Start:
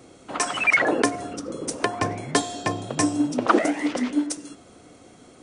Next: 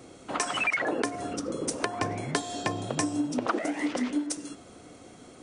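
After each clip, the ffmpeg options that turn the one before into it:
-af "acompressor=threshold=0.0562:ratio=6"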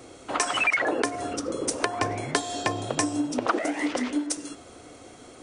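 -af "equalizer=f=180:w=1.7:g=-9,volume=1.58"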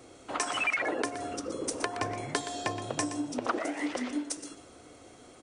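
-af "aecho=1:1:121:0.266,volume=0.501"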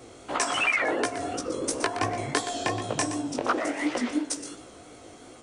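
-af "flanger=delay=15.5:depth=6.8:speed=2.8,volume=2.51"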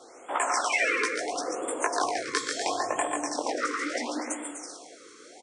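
-af "highpass=460,equalizer=f=870:t=q:w=4:g=4,equalizer=f=2900:t=q:w=4:g=-7,equalizer=f=5400:t=q:w=4:g=3,lowpass=f=8700:w=0.5412,lowpass=f=8700:w=1.3066,aecho=1:1:140|245|323.8|382.8|427.1:0.631|0.398|0.251|0.158|0.1,afftfilt=real='re*(1-between(b*sr/1024,710*pow(5100/710,0.5+0.5*sin(2*PI*0.73*pts/sr))/1.41,710*pow(5100/710,0.5+0.5*sin(2*PI*0.73*pts/sr))*1.41))':imag='im*(1-between(b*sr/1024,710*pow(5100/710,0.5+0.5*sin(2*PI*0.73*pts/sr))/1.41,710*pow(5100/710,0.5+0.5*sin(2*PI*0.73*pts/sr))*1.41))':win_size=1024:overlap=0.75"

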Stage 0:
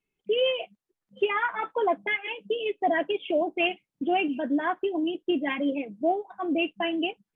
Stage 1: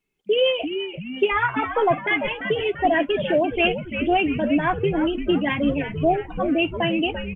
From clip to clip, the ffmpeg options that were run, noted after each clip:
-filter_complex "[0:a]asplit=7[s0][s1][s2][s3][s4][s5][s6];[s1]adelay=341,afreqshift=-130,volume=0.376[s7];[s2]adelay=682,afreqshift=-260,volume=0.2[s8];[s3]adelay=1023,afreqshift=-390,volume=0.106[s9];[s4]adelay=1364,afreqshift=-520,volume=0.0562[s10];[s5]adelay=1705,afreqshift=-650,volume=0.0295[s11];[s6]adelay=2046,afreqshift=-780,volume=0.0157[s12];[s0][s7][s8][s9][s10][s11][s12]amix=inputs=7:normalize=0,volume=1.78"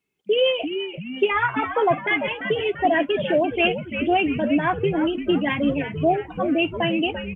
-af "highpass=77"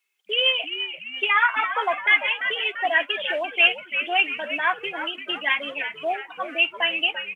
-af "highpass=1300,volume=2"

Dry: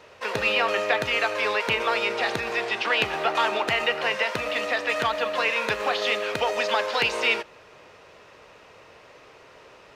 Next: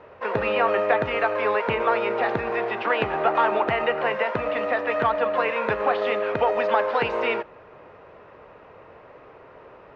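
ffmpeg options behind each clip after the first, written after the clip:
-af "lowpass=1400,volume=1.68"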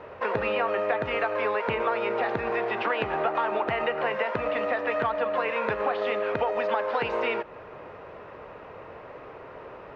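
-af "acompressor=threshold=0.0316:ratio=3,volume=1.58"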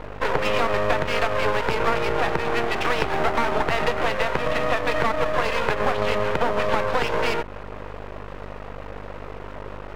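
-af "aeval=exprs='val(0)+0.00794*(sin(2*PI*50*n/s)+sin(2*PI*2*50*n/s)/2+sin(2*PI*3*50*n/s)/3+sin(2*PI*4*50*n/s)/4+sin(2*PI*5*50*n/s)/5)':c=same,aeval=exprs='max(val(0),0)':c=same,volume=2.66"

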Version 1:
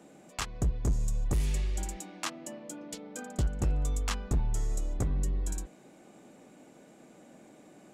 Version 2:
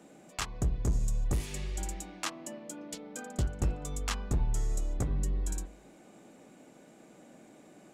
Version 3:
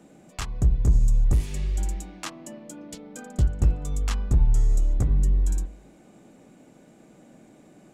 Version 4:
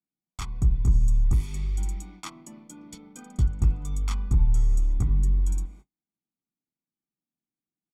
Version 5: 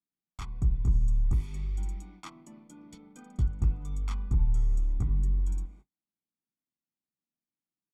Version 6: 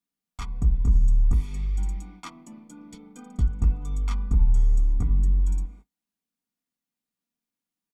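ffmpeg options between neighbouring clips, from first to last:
-af "bandreject=f=49.94:t=h:w=4,bandreject=f=99.88:t=h:w=4,bandreject=f=149.82:t=h:w=4,bandreject=f=199.76:t=h:w=4,bandreject=f=249.7:t=h:w=4,bandreject=f=299.64:t=h:w=4,bandreject=f=349.58:t=h:w=4,bandreject=f=399.52:t=h:w=4,bandreject=f=449.46:t=h:w=4,bandreject=f=499.4:t=h:w=4,bandreject=f=549.34:t=h:w=4,bandreject=f=599.28:t=h:w=4,bandreject=f=649.22:t=h:w=4,bandreject=f=699.16:t=h:w=4,bandreject=f=749.1:t=h:w=4,bandreject=f=799.04:t=h:w=4,bandreject=f=848.98:t=h:w=4,bandreject=f=898.92:t=h:w=4,bandreject=f=948.86:t=h:w=4,bandreject=f=998.8:t=h:w=4,bandreject=f=1048.74:t=h:w=4,bandreject=f=1098.68:t=h:w=4,bandreject=f=1148.62:t=h:w=4"
-af "lowshelf=f=180:g=11.5"
-af "agate=range=0.00891:threshold=0.00708:ratio=16:detection=peak,aecho=1:1:0.9:0.69,volume=0.531"
-af "highshelf=f=4300:g=-9,volume=0.596"
-af "aecho=1:1:4.2:0.44,volume=1.58"

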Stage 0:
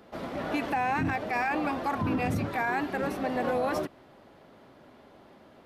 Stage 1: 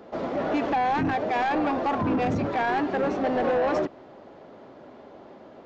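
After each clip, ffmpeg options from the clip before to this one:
-af "equalizer=f=490:t=o:w=2.7:g=9.5,aresample=16000,asoftclip=type=tanh:threshold=0.112,aresample=44100"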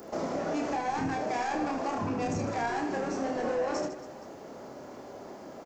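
-filter_complex "[0:a]acompressor=threshold=0.0251:ratio=6,aexciter=amount=9:drive=3.1:freq=5200,asplit=2[s0][s1];[s1]aecho=0:1:30|78|154.8|277.7|474.3:0.631|0.398|0.251|0.158|0.1[s2];[s0][s2]amix=inputs=2:normalize=0"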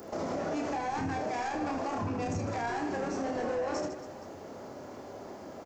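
-af "equalizer=f=89:t=o:w=0.34:g=11,alimiter=level_in=1.19:limit=0.0631:level=0:latency=1:release=55,volume=0.841"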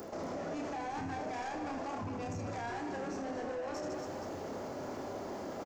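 -af "areverse,acompressor=threshold=0.00891:ratio=6,areverse,asoftclip=type=tanh:threshold=0.0126,aecho=1:1:237:0.282,volume=1.88"

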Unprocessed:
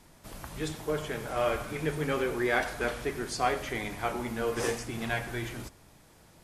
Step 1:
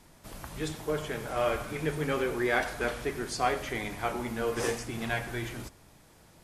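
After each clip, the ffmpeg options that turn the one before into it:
-af anull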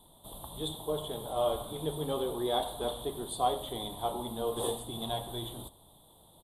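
-af "firequalizer=gain_entry='entry(290,0);entry(670,5);entry(1000,5);entry(1500,-16);entry(2400,-20);entry(3500,15);entry(5400,-29);entry(8600,8)':delay=0.05:min_phase=1,volume=0.596"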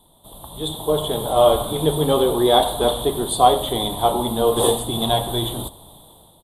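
-af "dynaudnorm=f=300:g=5:m=3.98,volume=1.5"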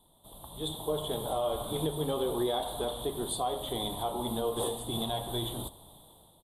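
-af "alimiter=limit=0.237:level=0:latency=1:release=272,volume=0.355"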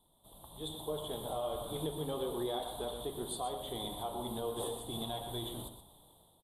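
-af "aecho=1:1:122:0.335,volume=0.473"

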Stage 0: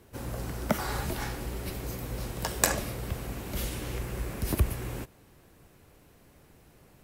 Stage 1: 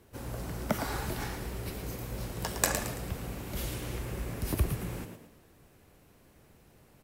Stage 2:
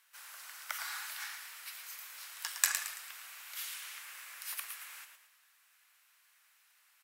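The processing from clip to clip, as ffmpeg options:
-filter_complex "[0:a]asplit=6[s0][s1][s2][s3][s4][s5];[s1]adelay=111,afreqshift=56,volume=0.398[s6];[s2]adelay=222,afreqshift=112,volume=0.158[s7];[s3]adelay=333,afreqshift=168,volume=0.0638[s8];[s4]adelay=444,afreqshift=224,volume=0.0254[s9];[s5]adelay=555,afreqshift=280,volume=0.0102[s10];[s0][s6][s7][s8][s9][s10]amix=inputs=6:normalize=0,volume=0.708"
-af "highpass=f=1300:w=0.5412,highpass=f=1300:w=1.3066"

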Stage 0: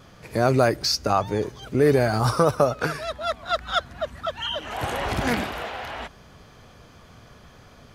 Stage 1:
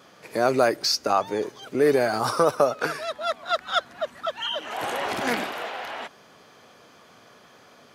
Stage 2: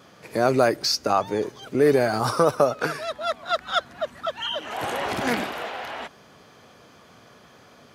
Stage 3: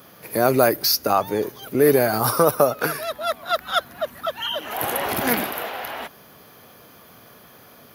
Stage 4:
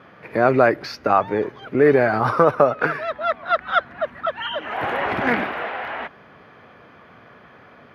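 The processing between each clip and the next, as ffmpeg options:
-af "highpass=280"
-af "lowshelf=f=160:g=10.5"
-af "aexciter=amount=13.4:drive=5.2:freq=11000,volume=1.26"
-af "lowpass=f=2000:t=q:w=1.5,volume=1.12"

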